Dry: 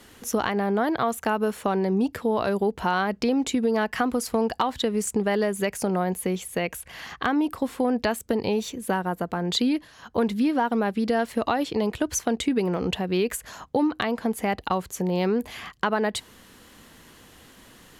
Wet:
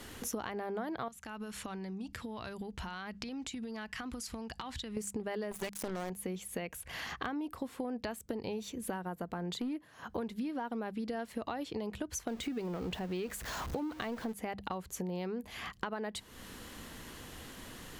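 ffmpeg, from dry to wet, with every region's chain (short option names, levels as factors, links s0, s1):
-filter_complex "[0:a]asettb=1/sr,asplit=3[s0][s1][s2];[s0]atrim=end=1.084[s3];[s1]atrim=start=1.08:end=4.97,asetpts=PTS-STARTPTS,afade=t=in:d=0.004:c=qsin,afade=t=out:st=3.886:d=0.004:c=qsin,lowpass=9200,equalizer=f=490:w=0.52:g=-13.5,acompressor=threshold=0.0141:ratio=4:attack=3.2:release=140:knee=1:detection=peak[s4];[s2]atrim=start=4.966[s5];[s3][s4]acrossfade=d=0.004:c1=hsin:c2=qsin[s6];[s6][s5]acrossfade=d=0.004:c1=qsin:c2=hsin,asettb=1/sr,asplit=3[s7][s8][s9];[s7]atrim=end=5.514[s10];[s8]atrim=start=5.51:end=6.1,asetpts=PTS-STARTPTS,afade=t=in:d=0.004:c=qsin,afade=t=out:st=0.586:d=0.004:c=qsin,highshelf=f=2200:g=5.5,acrusher=bits=3:mix=0:aa=0.5[s11];[s9]atrim=start=6.096[s12];[s10][s11]acrossfade=d=0.004:c1=hsin:c2=qsin[s13];[s13][s12]acrossfade=d=0.004:c1=qsin:c2=hsin,asettb=1/sr,asplit=3[s14][s15][s16];[s14]atrim=end=9.544[s17];[s15]atrim=start=9.54:end=10.09,asetpts=PTS-STARTPTS,afade=t=in:d=0.004:c=qsin,afade=t=out:st=0.546:d=0.004:c=qsin,highpass=110,equalizer=f=4600:w=0.81:g=-9.5,asoftclip=type=hard:threshold=0.119[s18];[s16]atrim=start=10.086[s19];[s17][s18]acrossfade=d=0.004:c1=hsin:c2=qsin[s20];[s20][s19]acrossfade=d=0.004:c1=qsin:c2=hsin,asettb=1/sr,asplit=3[s21][s22][s23];[s21]atrim=end=12.274[s24];[s22]atrim=start=12.27:end=14.33,asetpts=PTS-STARTPTS,afade=t=in:d=0.004:c=qsin,afade=t=out:st=2.056:d=0.004:c=qsin,aeval=exprs='val(0)+0.5*0.0251*sgn(val(0))':c=same,equalizer=f=10000:t=o:w=0.83:g=-4[s25];[s23]atrim=start=14.326[s26];[s24][s25]acrossfade=d=0.004:c1=hsin:c2=qsin[s27];[s27][s26]acrossfade=d=0.004:c1=qsin:c2=hsin,lowshelf=f=110:g=6,bandreject=f=50:t=h:w=6,bandreject=f=100:t=h:w=6,bandreject=f=150:t=h:w=6,bandreject=f=200:t=h:w=6,acompressor=threshold=0.01:ratio=4,volume=1.19"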